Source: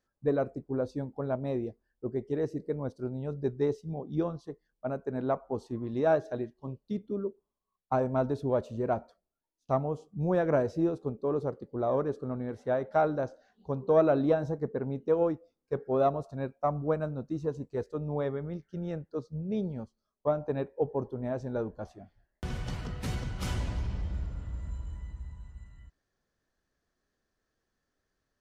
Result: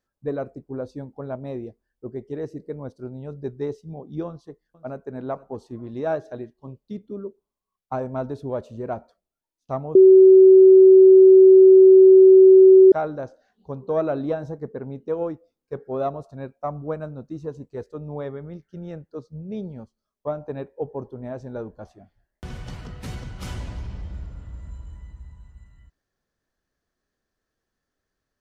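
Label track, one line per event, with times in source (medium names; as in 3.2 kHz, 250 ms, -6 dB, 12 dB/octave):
4.270000	5.090000	echo throw 470 ms, feedback 35%, level -17.5 dB
9.950000	12.920000	bleep 379 Hz -6.5 dBFS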